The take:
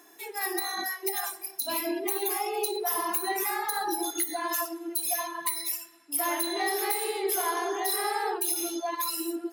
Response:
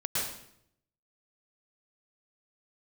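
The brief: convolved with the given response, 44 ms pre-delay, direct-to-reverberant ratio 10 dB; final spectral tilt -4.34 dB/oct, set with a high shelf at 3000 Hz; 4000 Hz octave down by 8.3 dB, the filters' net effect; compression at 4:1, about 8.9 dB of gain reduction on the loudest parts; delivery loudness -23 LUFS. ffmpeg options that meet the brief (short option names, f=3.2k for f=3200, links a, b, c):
-filter_complex "[0:a]highshelf=f=3k:g=-8,equalizer=f=4k:t=o:g=-3.5,acompressor=threshold=-37dB:ratio=4,asplit=2[a][b];[1:a]atrim=start_sample=2205,adelay=44[c];[b][c]afir=irnorm=-1:irlink=0,volume=-17.5dB[d];[a][d]amix=inputs=2:normalize=0,volume=16dB"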